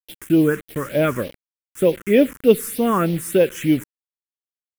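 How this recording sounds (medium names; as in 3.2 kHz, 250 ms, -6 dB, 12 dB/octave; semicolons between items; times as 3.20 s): a quantiser's noise floor 6-bit, dither none; phasing stages 4, 3.3 Hz, lowest notch 640–1300 Hz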